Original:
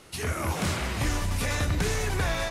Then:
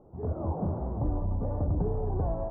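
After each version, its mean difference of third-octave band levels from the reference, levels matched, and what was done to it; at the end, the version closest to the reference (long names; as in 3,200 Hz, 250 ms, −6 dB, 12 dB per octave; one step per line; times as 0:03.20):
17.5 dB: Butterworth low-pass 870 Hz 36 dB per octave
level −1 dB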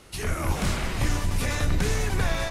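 1.5 dB: sub-octave generator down 2 octaves, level +2 dB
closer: second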